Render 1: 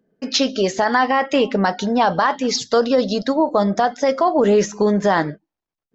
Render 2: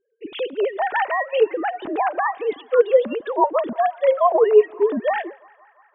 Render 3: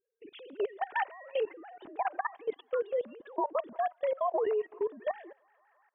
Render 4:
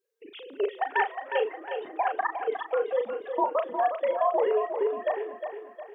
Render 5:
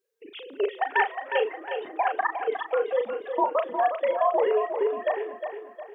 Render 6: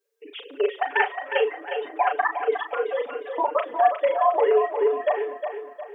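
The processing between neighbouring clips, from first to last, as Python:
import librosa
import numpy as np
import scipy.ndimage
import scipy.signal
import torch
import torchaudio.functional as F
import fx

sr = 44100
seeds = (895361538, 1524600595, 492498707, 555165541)

y1 = fx.sine_speech(x, sr)
y1 = fx.echo_banded(y1, sr, ms=171, feedback_pct=84, hz=1300.0, wet_db=-24)
y1 = y1 * 10.0 ** (-2.0 / 20.0)
y2 = fx.level_steps(y1, sr, step_db=20)
y2 = fx.air_absorb(y2, sr, metres=55.0)
y2 = y2 * 10.0 ** (-8.0 / 20.0)
y3 = fx.highpass(y2, sr, hz=350.0, slope=6)
y3 = fx.doubler(y3, sr, ms=37.0, db=-7.0)
y3 = fx.echo_feedback(y3, sr, ms=359, feedback_pct=45, wet_db=-7.5)
y3 = y3 * 10.0 ** (5.5 / 20.0)
y4 = fx.dynamic_eq(y3, sr, hz=2400.0, q=1.1, threshold_db=-47.0, ratio=4.0, max_db=3)
y4 = y4 * 10.0 ** (1.5 / 20.0)
y5 = scipy.signal.sosfilt(scipy.signal.butter(2, 290.0, 'highpass', fs=sr, output='sos'), y4)
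y5 = y5 + 0.98 * np.pad(y5, (int(6.9 * sr / 1000.0), 0))[:len(y5)]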